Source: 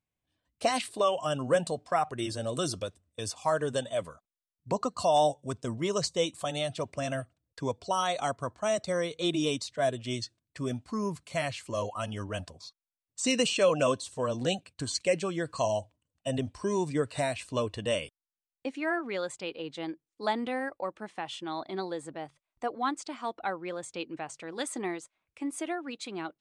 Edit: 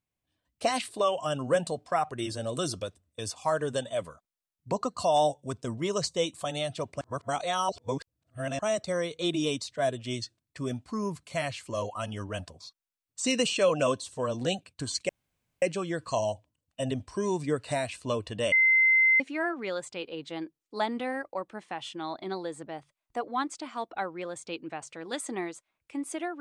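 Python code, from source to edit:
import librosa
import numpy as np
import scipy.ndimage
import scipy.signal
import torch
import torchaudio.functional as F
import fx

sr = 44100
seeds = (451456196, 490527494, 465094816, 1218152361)

y = fx.edit(x, sr, fx.reverse_span(start_s=7.01, length_s=1.58),
    fx.insert_room_tone(at_s=15.09, length_s=0.53),
    fx.bleep(start_s=17.99, length_s=0.68, hz=2070.0, db=-18.0), tone=tone)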